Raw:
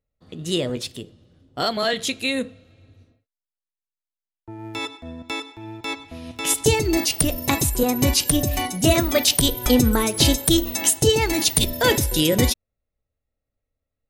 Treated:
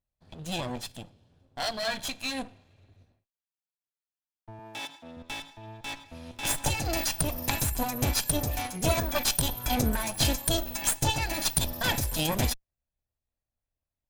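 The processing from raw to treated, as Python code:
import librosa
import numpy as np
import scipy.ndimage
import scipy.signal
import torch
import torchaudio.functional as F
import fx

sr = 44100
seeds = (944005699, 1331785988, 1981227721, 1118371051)

y = fx.lower_of_two(x, sr, delay_ms=1.2)
y = fx.highpass(y, sr, hz=190.0, slope=12, at=(4.59, 5.17))
y = fx.band_squash(y, sr, depth_pct=70, at=(6.43, 7.72))
y = F.gain(torch.from_numpy(y), -6.5).numpy()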